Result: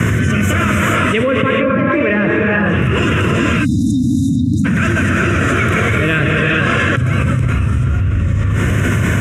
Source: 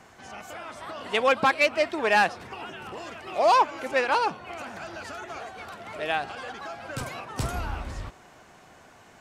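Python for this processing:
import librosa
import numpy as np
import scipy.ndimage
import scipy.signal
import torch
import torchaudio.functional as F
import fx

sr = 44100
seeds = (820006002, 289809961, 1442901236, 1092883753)

y = fx.rotary(x, sr, hz=1.2)
y = fx.env_lowpass_down(y, sr, base_hz=1100.0, full_db=-20.5)
y = scipy.signal.sosfilt(scipy.signal.butter(4, 73.0, 'highpass', fs=sr, output='sos'), y)
y = fx.peak_eq(y, sr, hz=110.0, db=8.5, octaves=1.5)
y = fx.echo_feedback(y, sr, ms=169, feedback_pct=59, wet_db=-20)
y = fx.spec_erase(y, sr, start_s=3.21, length_s=1.44, low_hz=320.0, high_hz=3600.0)
y = fx.low_shelf(y, sr, hz=180.0, db=8.5)
y = fx.fixed_phaser(y, sr, hz=1900.0, stages=4)
y = fx.rev_gated(y, sr, seeds[0], gate_ms=460, shape='rising', drr_db=-3.5)
y = fx.env_flatten(y, sr, amount_pct=100)
y = y * librosa.db_to_amplitude(2.5)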